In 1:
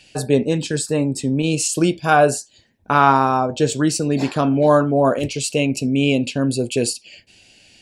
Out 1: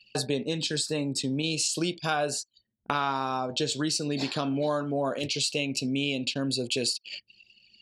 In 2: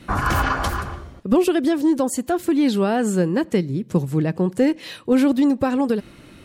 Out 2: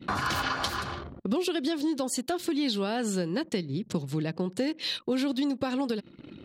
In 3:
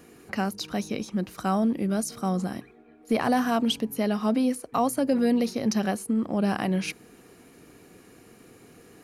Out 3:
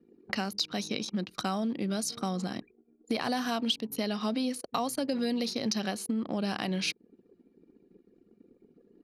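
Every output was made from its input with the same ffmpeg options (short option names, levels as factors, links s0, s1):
-af "highpass=110,anlmdn=0.158,equalizer=f=4100:t=o:w=1.2:g=13.5,acompressor=threshold=0.02:ratio=3,volume=1.41"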